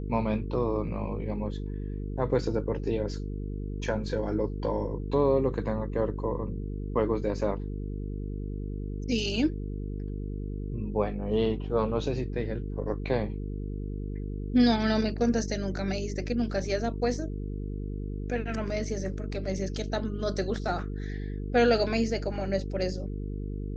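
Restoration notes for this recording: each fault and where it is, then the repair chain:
buzz 50 Hz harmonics 9 -34 dBFS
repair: de-hum 50 Hz, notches 9

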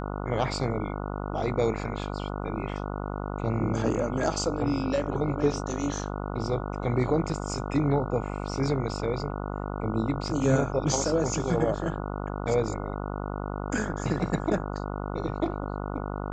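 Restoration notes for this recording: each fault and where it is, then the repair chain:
buzz 50 Hz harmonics 29 -33 dBFS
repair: de-hum 50 Hz, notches 29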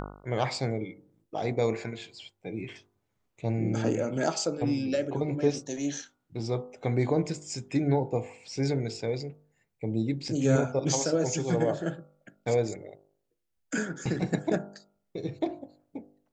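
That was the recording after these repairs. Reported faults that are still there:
none

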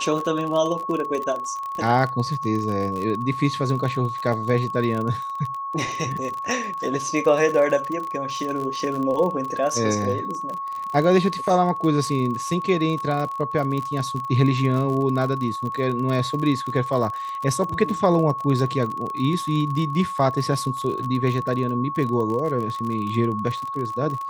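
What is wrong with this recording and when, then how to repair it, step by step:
crackle 40/s -27 dBFS
tone 1100 Hz -27 dBFS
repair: de-click; notch 1100 Hz, Q 30

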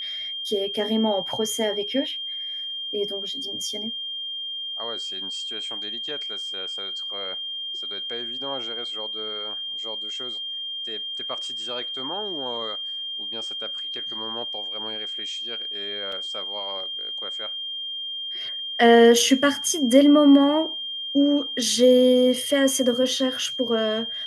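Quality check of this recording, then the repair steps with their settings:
tone 3200 Hz -29 dBFS
16.12 gap 3.8 ms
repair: notch 3200 Hz, Q 30; interpolate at 16.12, 3.8 ms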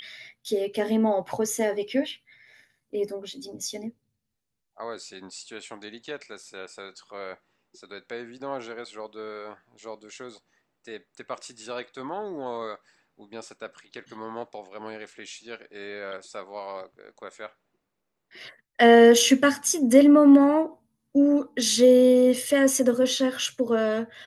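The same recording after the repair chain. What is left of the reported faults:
none

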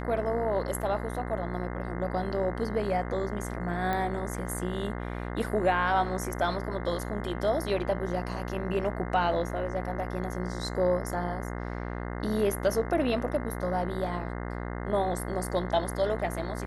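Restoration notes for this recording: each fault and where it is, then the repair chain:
buzz 60 Hz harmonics 35 -35 dBFS
3.93 pop -18 dBFS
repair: de-click; de-hum 60 Hz, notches 35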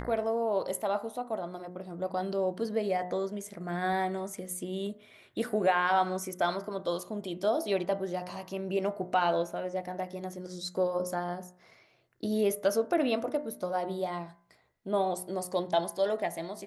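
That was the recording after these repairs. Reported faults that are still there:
none

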